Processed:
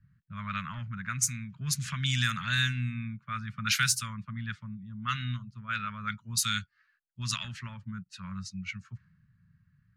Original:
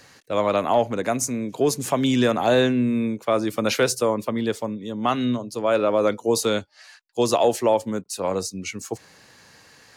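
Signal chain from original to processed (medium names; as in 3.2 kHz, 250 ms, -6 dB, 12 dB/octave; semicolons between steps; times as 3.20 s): elliptic band-stop 170–1400 Hz, stop band 40 dB; level-controlled noise filter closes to 310 Hz, open at -23.5 dBFS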